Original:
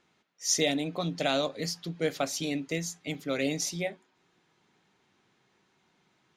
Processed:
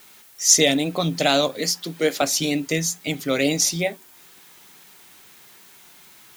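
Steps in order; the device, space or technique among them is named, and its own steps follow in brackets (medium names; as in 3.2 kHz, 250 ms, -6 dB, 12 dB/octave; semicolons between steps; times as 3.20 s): 1.58–2.22 s: high-pass 200 Hz 24 dB/octave; noise-reduction cassette on a plain deck (tape noise reduction on one side only encoder only; wow and flutter; white noise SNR 32 dB); treble shelf 6.5 kHz +8.5 dB; trim +8.5 dB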